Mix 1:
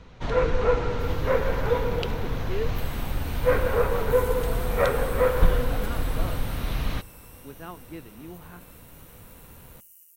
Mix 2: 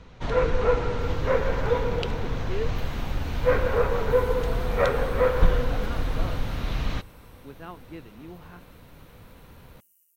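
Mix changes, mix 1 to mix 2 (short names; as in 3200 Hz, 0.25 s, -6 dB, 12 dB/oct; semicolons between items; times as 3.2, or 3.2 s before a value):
speech: send off; second sound -11.5 dB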